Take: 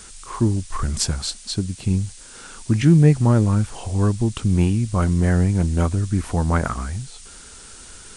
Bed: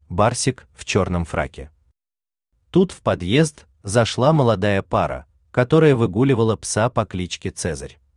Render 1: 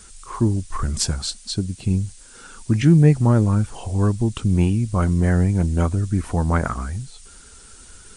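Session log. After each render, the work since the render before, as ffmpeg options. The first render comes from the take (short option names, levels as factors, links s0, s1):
-af "afftdn=nr=6:nf=-42"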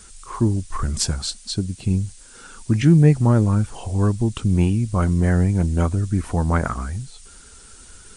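-af anull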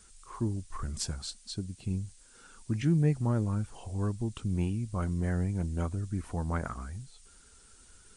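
-af "volume=0.237"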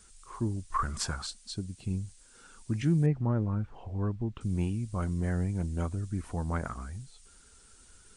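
-filter_complex "[0:a]asettb=1/sr,asplit=3[s0][s1][s2];[s0]atrim=end=0.744[s3];[s1]atrim=start=0.74:end=1.27,asetpts=PTS-STARTPTS,afade=t=in:d=0.004:c=qsin,afade=t=out:st=0.526:d=0.004:c=qsin,equalizer=f=1200:w=0.88:g=14.5[s4];[s2]atrim=start=1.266[s5];[s3][s4]acrossfade=d=0.004:c1=hsin:c2=qsin[s6];[s6][s5]acrossfade=d=0.004:c1=qsin:c2=hsin,asettb=1/sr,asplit=3[s7][s8][s9];[s7]atrim=end=3.064[s10];[s8]atrim=start=3.06:end=4.41,asetpts=PTS-STARTPTS,afade=t=in:d=0.004:c=qsin,afade=t=out:st=1.346:d=0.004:c=qsin,lowpass=2100[s11];[s9]atrim=start=4.406[s12];[s10][s11]acrossfade=d=0.004:c1=hsin:c2=qsin[s13];[s13][s12]acrossfade=d=0.004:c1=qsin:c2=hsin"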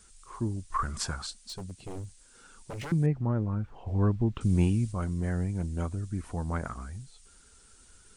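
-filter_complex "[0:a]asettb=1/sr,asplit=3[s0][s1][s2];[s0]atrim=end=1.454[s3];[s1]atrim=start=1.45:end=2.92,asetpts=PTS-STARTPTS,afade=t=in:d=0.004:c=qsin,afade=t=out:st=1.466:d=0.004:c=qsin,aeval=exprs='0.0224*(abs(mod(val(0)/0.0224+3,4)-2)-1)':c=same[s4];[s2]atrim=start=2.916[s5];[s3][s4]acrossfade=d=0.004:c1=hsin:c2=qsin[s6];[s6][s5]acrossfade=d=0.004:c1=qsin:c2=hsin,asplit=3[s7][s8][s9];[s7]afade=t=out:st=3.86:d=0.02[s10];[s8]acontrast=56,afade=t=in:st=3.86:d=0.02,afade=t=out:st=4.91:d=0.02[s11];[s9]afade=t=in:st=4.91:d=0.02[s12];[s10][s11][s12]amix=inputs=3:normalize=0"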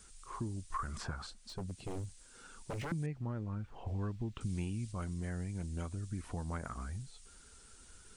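-filter_complex "[0:a]acrossover=split=2000|5500[s0][s1][s2];[s0]acompressor=threshold=0.0141:ratio=4[s3];[s1]acompressor=threshold=0.00224:ratio=4[s4];[s2]acompressor=threshold=0.00112:ratio=4[s5];[s3][s4][s5]amix=inputs=3:normalize=0"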